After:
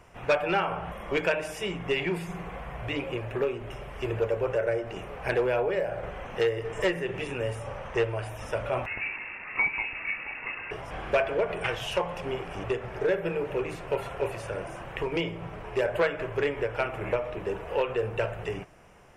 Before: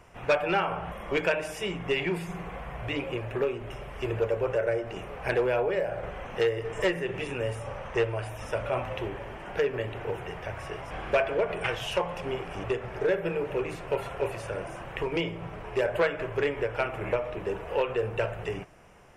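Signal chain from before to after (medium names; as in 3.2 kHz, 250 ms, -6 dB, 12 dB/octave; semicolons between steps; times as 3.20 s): 8.86–10.71 s: frequency inversion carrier 2.7 kHz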